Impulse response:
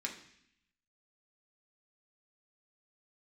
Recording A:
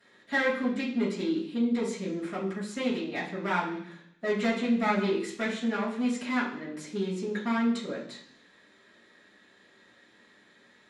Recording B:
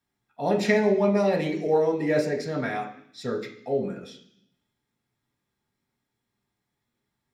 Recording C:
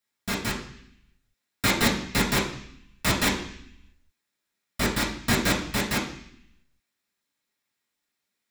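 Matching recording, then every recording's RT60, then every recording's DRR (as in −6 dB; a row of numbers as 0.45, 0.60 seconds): B; 0.70, 0.70, 0.70 seconds; −11.0, −0.5, −5.5 decibels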